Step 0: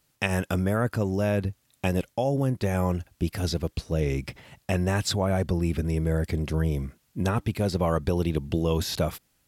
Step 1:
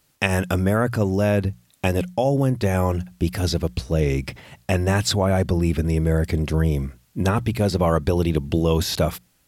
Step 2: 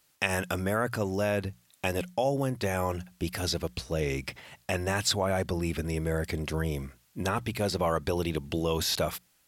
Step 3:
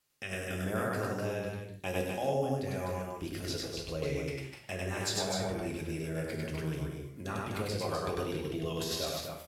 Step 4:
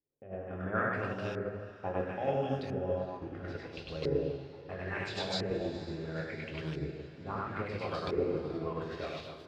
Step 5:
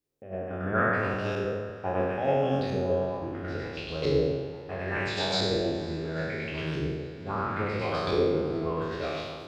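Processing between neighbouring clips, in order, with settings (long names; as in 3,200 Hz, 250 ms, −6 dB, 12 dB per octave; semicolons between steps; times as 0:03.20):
mains-hum notches 60/120/180 Hz; level +5.5 dB
low-shelf EQ 410 Hz −10 dB; in parallel at −1 dB: brickwall limiter −15 dBFS, peak gain reduction 9.5 dB; on the sum: level −8 dB
rotating-speaker cabinet horn 0.85 Hz, later 8 Hz, at 0:03.11; on a send: loudspeakers that aren't time-aligned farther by 34 metres −1 dB, 86 metres −4 dB, 99 metres −11 dB; on the sum: reverb whose tail is shaped and stops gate 190 ms falling, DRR 2.5 dB; level −8 dB
auto-filter low-pass saw up 0.74 Hz 360–4,400 Hz; feedback delay with all-pass diffusion 486 ms, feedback 63%, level −12.5 dB; expander for the loud parts 1.5 to 1, over −42 dBFS
peak hold with a decay on every bin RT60 1.16 s; level +4 dB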